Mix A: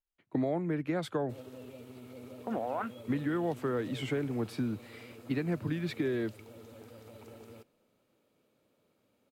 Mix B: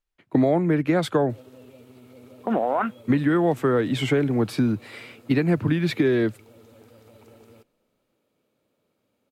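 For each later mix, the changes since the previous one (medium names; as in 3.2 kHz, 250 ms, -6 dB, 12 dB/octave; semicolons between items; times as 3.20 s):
speech +11.5 dB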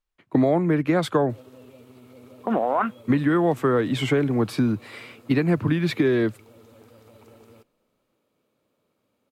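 master: add peaking EQ 1.1 kHz +4.5 dB 0.35 oct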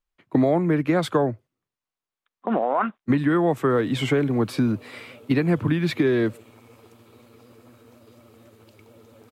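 background: entry +2.40 s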